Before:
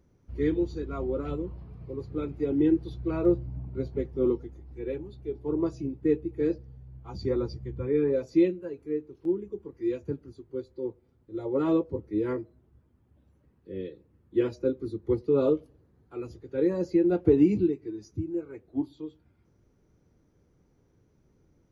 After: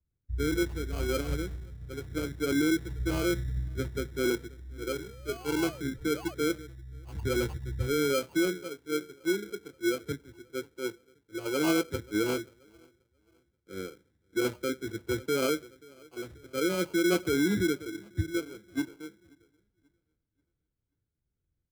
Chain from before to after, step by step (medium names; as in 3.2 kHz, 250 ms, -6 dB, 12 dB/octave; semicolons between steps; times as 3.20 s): on a send: feedback delay 532 ms, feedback 56%, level -23 dB; on the sum: peak limiter -21 dBFS, peak gain reduction 11 dB; in parallel at +3 dB: compression 4:1, threshold -45 dBFS, peak gain reduction 17 dB; on the sum: painted sound rise, 4.71–6.35 s, 250–3200 Hz -42 dBFS; sample-and-hold 24×; three bands expanded up and down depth 100%; trim -2 dB